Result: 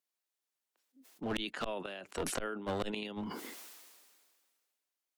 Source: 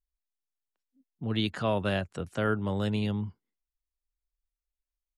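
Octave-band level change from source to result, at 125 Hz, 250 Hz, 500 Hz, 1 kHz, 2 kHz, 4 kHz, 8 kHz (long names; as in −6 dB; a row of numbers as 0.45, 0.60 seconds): −17.0 dB, −9.5 dB, −7.0 dB, −5.5 dB, −6.0 dB, −5.0 dB, can't be measured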